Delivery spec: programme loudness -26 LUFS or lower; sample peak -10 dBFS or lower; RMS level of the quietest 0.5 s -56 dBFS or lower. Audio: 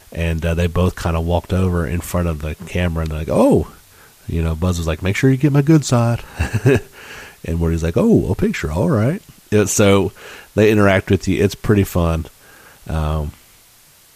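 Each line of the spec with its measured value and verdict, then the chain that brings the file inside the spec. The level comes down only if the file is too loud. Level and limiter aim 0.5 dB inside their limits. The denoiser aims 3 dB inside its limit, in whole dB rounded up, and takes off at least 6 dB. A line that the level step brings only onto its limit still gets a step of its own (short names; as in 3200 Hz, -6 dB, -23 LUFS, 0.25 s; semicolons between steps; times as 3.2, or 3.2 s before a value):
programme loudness -17.5 LUFS: fail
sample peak -2.0 dBFS: fail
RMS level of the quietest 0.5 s -49 dBFS: fail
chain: gain -9 dB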